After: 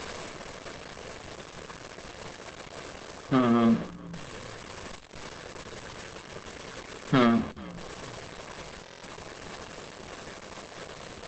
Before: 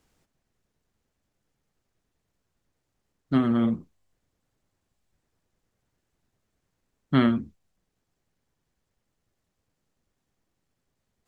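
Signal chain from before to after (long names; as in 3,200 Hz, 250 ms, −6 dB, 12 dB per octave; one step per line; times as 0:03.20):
converter with a step at zero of −33.5 dBFS
low-pass filter 3,600 Hz 6 dB per octave
low-shelf EQ 180 Hz −11.5 dB
comb filter 1.8 ms, depth 34%
0:03.60–0:07.15: dynamic equaliser 680 Hz, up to −4 dB, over −57 dBFS, Q 3.2
leveller curve on the samples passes 2
echo with shifted repeats 431 ms, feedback 38%, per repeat −59 Hz, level −19.5 dB
convolution reverb RT60 0.40 s, pre-delay 4 ms, DRR 15 dB
buffer that repeats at 0:08.82, samples 1,024, times 8
Opus 12 kbit/s 48,000 Hz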